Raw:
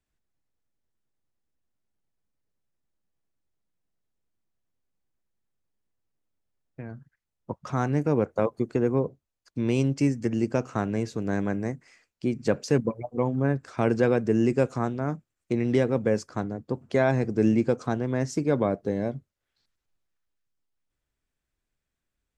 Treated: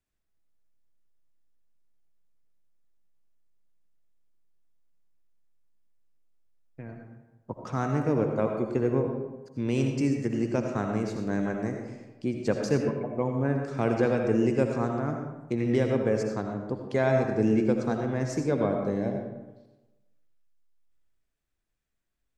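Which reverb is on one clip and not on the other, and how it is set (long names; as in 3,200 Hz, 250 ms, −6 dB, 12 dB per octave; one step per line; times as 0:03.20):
comb and all-pass reverb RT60 1.1 s, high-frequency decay 0.55×, pre-delay 40 ms, DRR 3 dB
level −3 dB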